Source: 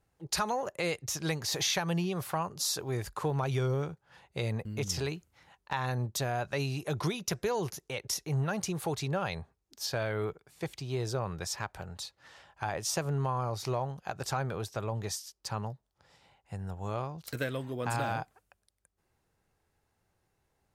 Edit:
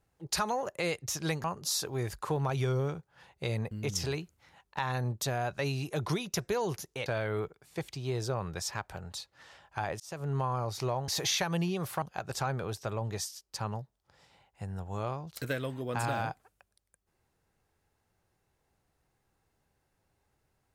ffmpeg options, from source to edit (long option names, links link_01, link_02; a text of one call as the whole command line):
ffmpeg -i in.wav -filter_complex "[0:a]asplit=6[link_01][link_02][link_03][link_04][link_05][link_06];[link_01]atrim=end=1.442[link_07];[link_02]atrim=start=2.378:end=8.002[link_08];[link_03]atrim=start=9.908:end=12.85,asetpts=PTS-STARTPTS,afade=type=out:start_time=2.938:duration=0.004:curve=hsin[link_09];[link_04]atrim=start=12.85:end=13.932,asetpts=PTS-STARTPTS,afade=type=in:duration=0.37[link_10];[link_05]atrim=start=1.438:end=2.382[link_11];[link_06]atrim=start=13.928[link_12];[link_07][link_08]acrossfade=duration=0.004:curve1=hsin:curve2=hsin[link_13];[link_09][link_10]concat=n=2:v=0:a=1[link_14];[link_13][link_14]acrossfade=duration=0.004:curve1=hsin:curve2=hsin[link_15];[link_15][link_11]acrossfade=duration=0.004:curve1=hsin:curve2=hsin[link_16];[link_16][link_12]acrossfade=duration=0.004:curve1=hsin:curve2=hsin" out.wav